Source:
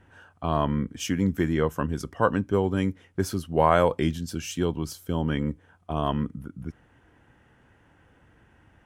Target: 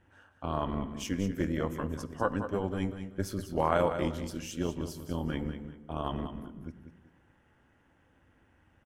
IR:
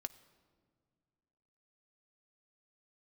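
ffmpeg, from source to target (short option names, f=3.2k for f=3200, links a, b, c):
-filter_complex "[0:a]tremolo=f=200:d=0.621,aecho=1:1:192|384|576:0.335|0.0871|0.0226[a];[1:a]atrim=start_sample=2205,afade=t=out:st=0.44:d=0.01,atrim=end_sample=19845[b];[a][b]afir=irnorm=-1:irlink=0,volume=-1.5dB"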